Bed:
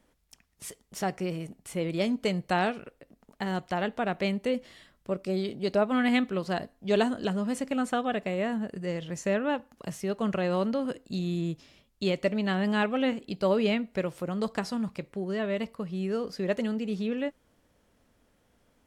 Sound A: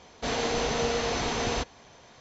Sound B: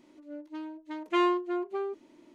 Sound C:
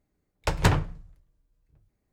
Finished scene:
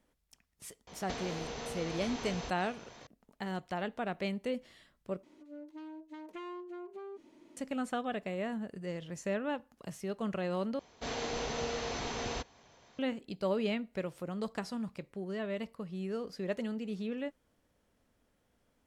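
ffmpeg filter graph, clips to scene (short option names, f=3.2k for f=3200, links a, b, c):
-filter_complex "[1:a]asplit=2[a][b];[0:a]volume=-7dB[c];[a]acompressor=threshold=-41dB:ratio=6:attack=37:release=229:knee=1:detection=peak[d];[2:a]acompressor=threshold=-40dB:ratio=6:attack=3.2:release=140:knee=1:detection=peak[e];[c]asplit=3[f][g][h];[f]atrim=end=5.234[i];[e]atrim=end=2.34,asetpts=PTS-STARTPTS,volume=-2.5dB[j];[g]atrim=start=7.566:end=10.794[k];[b]atrim=end=2.2,asetpts=PTS-STARTPTS,volume=-8.5dB[l];[h]atrim=start=12.986[m];[d]atrim=end=2.2,asetpts=PTS-STARTPTS,volume=-0.5dB,afade=t=in:d=0.004:c=hsin,afade=t=out:st=2.196:d=0.004:c=hsin,adelay=870[n];[i][j]acrossfade=d=0.004:c1=hsin:c2=hsin[o];[o][k]acrossfade=d=0.004:c1=hsin:c2=hsin[p];[p][l]acrossfade=d=0.004:c1=hsin:c2=hsin[q];[q][m]acrossfade=d=0.004:c1=hsin:c2=hsin[r];[r][n]amix=inputs=2:normalize=0"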